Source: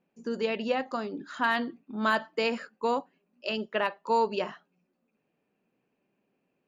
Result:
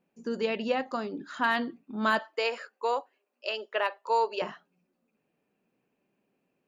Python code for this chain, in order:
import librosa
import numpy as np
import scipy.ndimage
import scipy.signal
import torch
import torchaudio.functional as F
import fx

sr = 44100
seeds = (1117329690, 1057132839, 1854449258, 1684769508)

y = fx.highpass(x, sr, hz=410.0, slope=24, at=(2.19, 4.42))